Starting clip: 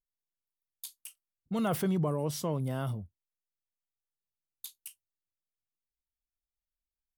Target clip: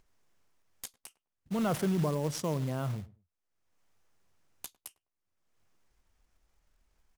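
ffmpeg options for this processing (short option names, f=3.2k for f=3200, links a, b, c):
-filter_complex "[0:a]acompressor=mode=upward:threshold=-47dB:ratio=2.5,aexciter=amount=4.7:drive=1.9:freq=5.4k,adynamicsmooth=sensitivity=4:basefreq=2.5k,acrusher=bits=4:mode=log:mix=0:aa=0.000001,asplit=2[a][b];[b]adelay=103,lowpass=f=1.1k:p=1,volume=-18.5dB,asplit=2[c][d];[d]adelay=103,lowpass=f=1.1k:p=1,volume=0.23[e];[a][c][e]amix=inputs=3:normalize=0"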